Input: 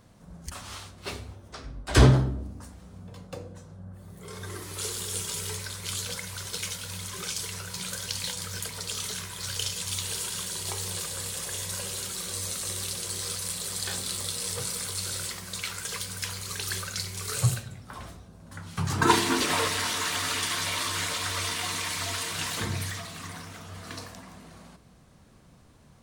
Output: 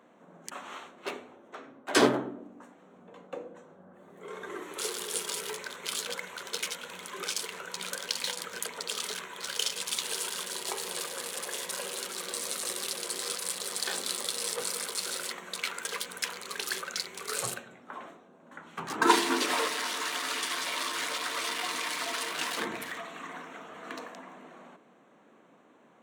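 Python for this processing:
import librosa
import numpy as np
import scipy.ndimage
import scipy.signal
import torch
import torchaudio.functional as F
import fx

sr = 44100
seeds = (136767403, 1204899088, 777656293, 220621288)

y = fx.wiener(x, sr, points=9)
y = fx.rider(y, sr, range_db=3, speed_s=2.0)
y = scipy.signal.sosfilt(scipy.signal.butter(4, 260.0, 'highpass', fs=sr, output='sos'), y)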